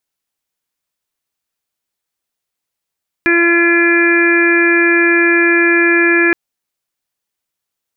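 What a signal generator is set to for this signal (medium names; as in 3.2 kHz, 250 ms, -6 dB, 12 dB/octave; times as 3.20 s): steady additive tone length 3.07 s, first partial 341 Hz, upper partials -16/-16.5/-12/0/-10/-4 dB, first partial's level -12 dB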